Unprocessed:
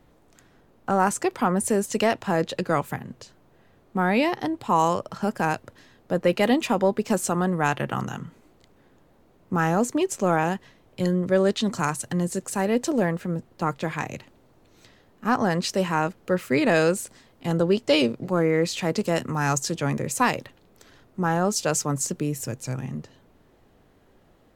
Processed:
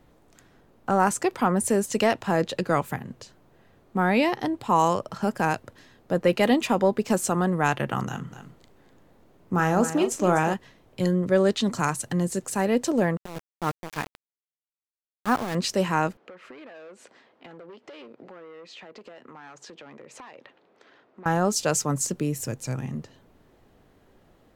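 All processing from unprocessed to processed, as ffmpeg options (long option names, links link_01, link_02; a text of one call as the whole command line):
ffmpeg -i in.wav -filter_complex "[0:a]asettb=1/sr,asplit=3[link_01][link_02][link_03];[link_01]atrim=end=8.064[link_04];[link_02]atrim=start=8.06:end=10.54,asetpts=PTS-STARTPTS,afade=type=in:duration=0.004:curve=qsin,afade=type=out:start_time=2.476:duration=0.004:curve=qsin,asplit=2[link_05][link_06];[link_06]adelay=39,volume=-11dB[link_07];[link_05][link_07]amix=inputs=2:normalize=0,atrim=end_sample=109368,aecho=1:1:249:0.282,atrim=end_sample=109368[link_08];[link_03]atrim=start=10.536[link_09];[link_04][link_08]acrossfade=duration=0.004:curve1=hsin:curve2=qsin[link_10];[link_10][link_09]acrossfade=duration=0.004:curve1=qsin:curve2=hsin,asettb=1/sr,asplit=3[link_11][link_12][link_13];[link_11]atrim=end=13.174[link_14];[link_12]atrim=start=13.17:end=15.55,asetpts=PTS-STARTPTS,afade=type=in:duration=0.004:curve=qsin,afade=type=out:start_time=2.376:duration=0.004:curve=qsin,highshelf=frequency=5300:gain=-9,tremolo=f=3.7:d=0.65,aeval=exprs='val(0)*gte(abs(val(0)),0.0316)':channel_layout=same[link_15];[link_13]atrim=start=15.546[link_16];[link_14][link_15]acrossfade=duration=0.004:curve1=hsin:curve2=qsin[link_17];[link_17][link_16]acrossfade=duration=0.004:curve1=qsin:curve2=hsin,asettb=1/sr,asplit=3[link_18][link_19][link_20];[link_18]atrim=end=16.174[link_21];[link_19]atrim=start=16.17:end=21.26,asetpts=PTS-STARTPTS,afade=type=in:duration=0.004:curve=qsin,afade=type=out:start_time=5.086:duration=0.004:curve=qsin,asoftclip=type=hard:threshold=-20dB,highpass=360,lowpass=2900,acompressor=threshold=-41dB:ratio=10:attack=3.2:release=140:knee=1:detection=peak[link_22];[link_20]atrim=start=21.256[link_23];[link_21][link_22]acrossfade=duration=0.004:curve1=hsin:curve2=qsin[link_24];[link_24][link_23]acrossfade=duration=0.004:curve1=qsin:curve2=hsin" out.wav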